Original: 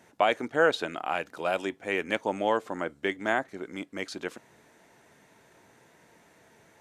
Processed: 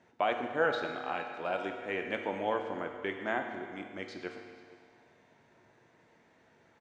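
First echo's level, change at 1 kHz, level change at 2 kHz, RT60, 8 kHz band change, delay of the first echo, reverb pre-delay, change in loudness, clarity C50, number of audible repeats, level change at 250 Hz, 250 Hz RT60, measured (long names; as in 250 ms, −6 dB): −21.5 dB, −4.5 dB, −5.5 dB, 1.9 s, below −10 dB, 469 ms, 8 ms, −5.5 dB, 5.0 dB, 1, −5.5 dB, 1.9 s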